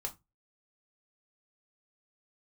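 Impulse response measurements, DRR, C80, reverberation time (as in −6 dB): 3.0 dB, 27.5 dB, 0.20 s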